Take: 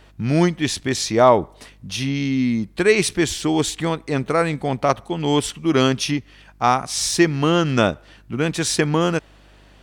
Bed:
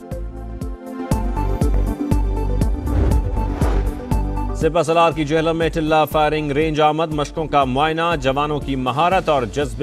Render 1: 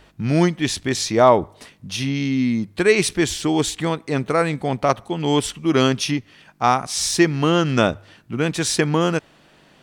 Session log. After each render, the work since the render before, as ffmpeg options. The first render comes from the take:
-af "bandreject=f=50:t=h:w=4,bandreject=f=100:t=h:w=4"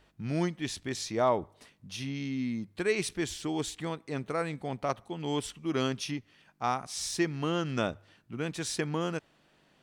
-af "volume=-13dB"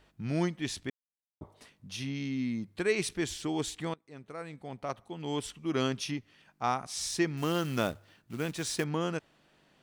-filter_complex "[0:a]asettb=1/sr,asplit=3[a][b][c];[a]atrim=end=7.374[d];[b]atrim=start=7.37:end=8.84,asetpts=PTS-STARTPTS,afade=t=in:d=0.004:c=qsin,afade=t=out:st=1.466:d=0.004:c=qsin,acrusher=bits=4:mode=log:mix=0:aa=0.000001[e];[c]atrim=start=8.836[f];[d][e]acrossfade=d=0.004:c1=hsin:c2=qsin[g];[g][f]acrossfade=d=0.004:c1=qsin:c2=hsin,asplit=4[h][i][j][k];[h]atrim=end=0.9,asetpts=PTS-STARTPTS,afade=t=out:st=0.896:d=0.004:c=hsin[l];[i]atrim=start=0.9:end=1.41,asetpts=PTS-STARTPTS,volume=0[m];[j]atrim=start=1.41:end=3.94,asetpts=PTS-STARTPTS,afade=t=in:d=0.004:c=hsin,afade=t=out:st=2.526:d=0.004:c=hsin:silence=0.105925[n];[k]atrim=start=3.94,asetpts=PTS-STARTPTS,afade=t=in:d=1.86:silence=0.105925[o];[l][m][n][o]concat=n=4:v=0:a=1"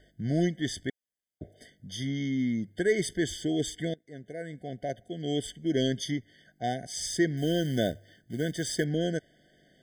-filter_complex "[0:a]asplit=2[a][b];[b]volume=24.5dB,asoftclip=hard,volume=-24.5dB,volume=-4dB[c];[a][c]amix=inputs=2:normalize=0,afftfilt=real='re*eq(mod(floor(b*sr/1024/740),2),0)':imag='im*eq(mod(floor(b*sr/1024/740),2),0)':win_size=1024:overlap=0.75"

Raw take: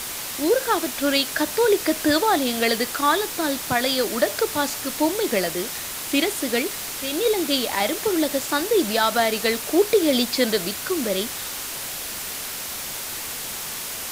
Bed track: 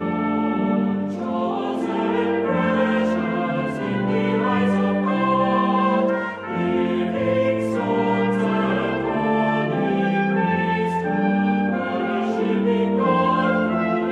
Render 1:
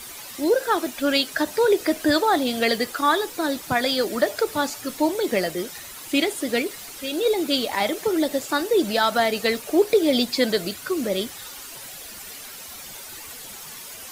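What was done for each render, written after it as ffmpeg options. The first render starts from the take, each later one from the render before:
-af "afftdn=nr=11:nf=-32"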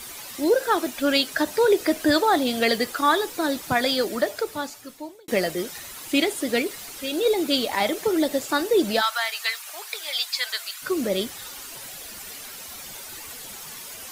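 -filter_complex "[0:a]asplit=3[a][b][c];[a]afade=t=out:st=9:d=0.02[d];[b]highpass=f=1k:w=0.5412,highpass=f=1k:w=1.3066,afade=t=in:st=9:d=0.02,afade=t=out:st=10.81:d=0.02[e];[c]afade=t=in:st=10.81:d=0.02[f];[d][e][f]amix=inputs=3:normalize=0,asplit=2[g][h];[g]atrim=end=5.28,asetpts=PTS-STARTPTS,afade=t=out:st=3.89:d=1.39[i];[h]atrim=start=5.28,asetpts=PTS-STARTPTS,afade=t=in:d=0.004:c=hsin[j];[i][j]concat=n=2:v=0:a=1"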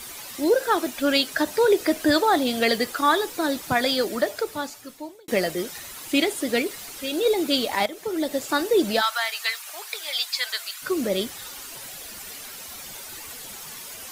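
-filter_complex "[0:a]asplit=2[a][b];[a]atrim=end=7.86,asetpts=PTS-STARTPTS,afade=t=out:st=7.856:d=0.004:c=hsin:silence=0.223872[c];[b]atrim=start=7.86,asetpts=PTS-STARTPTS,afade=t=in:d=0.65:silence=0.223872[d];[c][d]concat=n=2:v=0:a=1"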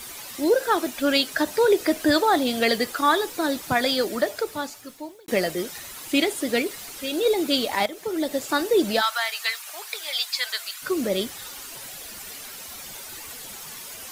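-af "acrusher=bits=9:mix=0:aa=0.000001"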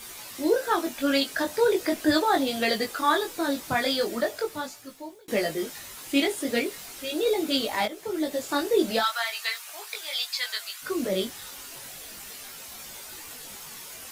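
-af "flanger=delay=18.5:depth=3.4:speed=0.39"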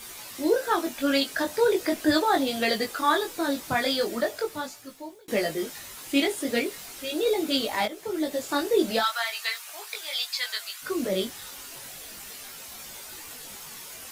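-af anull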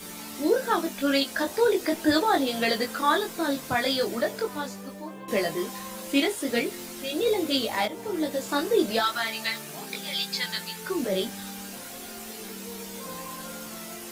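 -filter_complex "[1:a]volume=-21.5dB[a];[0:a][a]amix=inputs=2:normalize=0"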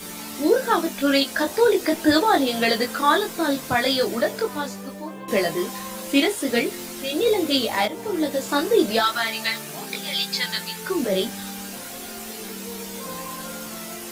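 -af "volume=4.5dB"

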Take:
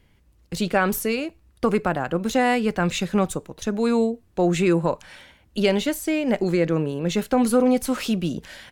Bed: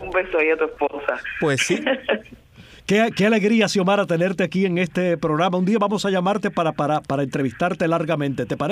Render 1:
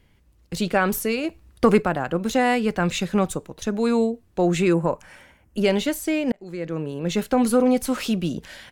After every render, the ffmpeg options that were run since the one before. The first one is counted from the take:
-filter_complex "[0:a]asplit=3[a][b][c];[a]afade=t=out:st=1.23:d=0.02[d];[b]acontrast=26,afade=t=in:st=1.23:d=0.02,afade=t=out:st=1.81:d=0.02[e];[c]afade=t=in:st=1.81:d=0.02[f];[d][e][f]amix=inputs=3:normalize=0,asettb=1/sr,asplit=3[g][h][i];[g]atrim=end=4.744[j];[h]atrim=start=4.74:end=5.66,asetpts=PTS-STARTPTS,afade=t=in:d=0.004:c=qsin,afade=t=out:st=0.916:d=0.004:c=qsin,equalizer=f=3.8k:w=2:g=-12.5[k];[i]atrim=start=5.656[l];[j][k]acrossfade=d=0.004:c1=hsin:c2=qsin[m];[m][l]acrossfade=d=0.004:c1=qsin:c2=hsin,asplit=2[n][o];[n]atrim=end=6.32,asetpts=PTS-STARTPTS,afade=t=out:st=6.316:d=0.004:c=hsin[p];[o]atrim=start=6.32,asetpts=PTS-STARTPTS,afade=t=in:d=0.86[q];[p][q]concat=n=2:v=0:a=1"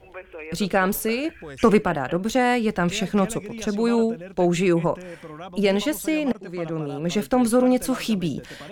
-filter_complex "[1:a]volume=-18.5dB[a];[0:a][a]amix=inputs=2:normalize=0"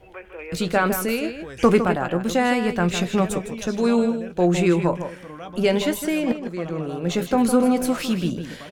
-filter_complex "[0:a]asplit=2[a][b];[b]adelay=17,volume=-12dB[c];[a][c]amix=inputs=2:normalize=0,asplit=2[d][e];[e]adelay=157.4,volume=-9dB,highshelf=f=4k:g=-3.54[f];[d][f]amix=inputs=2:normalize=0"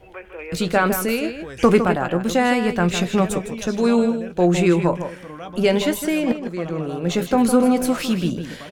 -af "volume=2dB,alimiter=limit=-3dB:level=0:latency=1"

